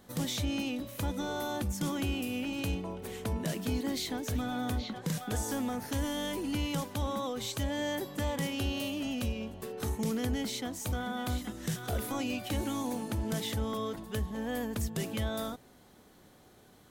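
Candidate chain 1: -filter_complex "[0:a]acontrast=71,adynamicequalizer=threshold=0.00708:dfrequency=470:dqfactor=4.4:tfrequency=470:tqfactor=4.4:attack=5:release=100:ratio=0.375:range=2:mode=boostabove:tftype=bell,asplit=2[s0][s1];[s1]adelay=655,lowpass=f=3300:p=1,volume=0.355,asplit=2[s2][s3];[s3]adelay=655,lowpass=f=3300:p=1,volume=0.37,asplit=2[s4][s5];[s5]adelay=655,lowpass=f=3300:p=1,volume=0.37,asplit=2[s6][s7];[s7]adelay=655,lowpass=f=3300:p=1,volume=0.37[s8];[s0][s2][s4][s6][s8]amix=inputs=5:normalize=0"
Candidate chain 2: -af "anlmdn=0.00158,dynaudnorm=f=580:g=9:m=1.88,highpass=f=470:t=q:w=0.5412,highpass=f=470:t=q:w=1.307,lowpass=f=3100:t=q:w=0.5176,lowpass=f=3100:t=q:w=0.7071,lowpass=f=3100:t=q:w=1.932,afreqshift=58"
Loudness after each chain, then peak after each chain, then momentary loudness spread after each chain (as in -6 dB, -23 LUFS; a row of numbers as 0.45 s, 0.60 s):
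-27.0 LUFS, -36.0 LUFS; -14.5 dBFS, -20.0 dBFS; 4 LU, 8 LU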